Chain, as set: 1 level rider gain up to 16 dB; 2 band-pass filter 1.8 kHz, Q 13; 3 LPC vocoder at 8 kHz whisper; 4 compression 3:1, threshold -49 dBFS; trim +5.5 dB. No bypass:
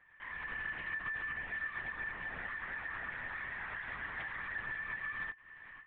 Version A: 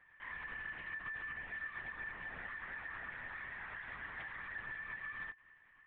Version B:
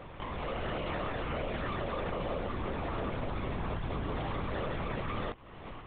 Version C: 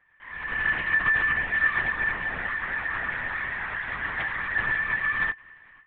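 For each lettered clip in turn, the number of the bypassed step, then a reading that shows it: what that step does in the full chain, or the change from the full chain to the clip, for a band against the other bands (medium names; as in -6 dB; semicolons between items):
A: 1, loudness change -4.5 LU; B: 2, 2 kHz band -26.0 dB; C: 4, mean gain reduction 12.0 dB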